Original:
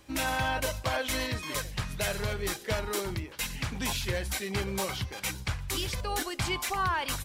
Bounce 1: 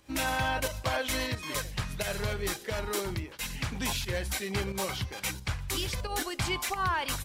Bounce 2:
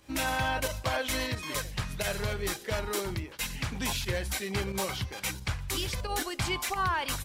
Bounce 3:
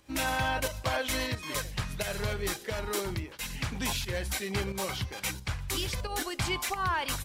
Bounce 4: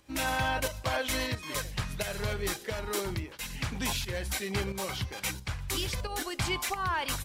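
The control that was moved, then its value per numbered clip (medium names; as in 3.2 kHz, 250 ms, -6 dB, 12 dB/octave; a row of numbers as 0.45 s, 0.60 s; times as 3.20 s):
volume shaper, release: 158 ms, 61 ms, 232 ms, 375 ms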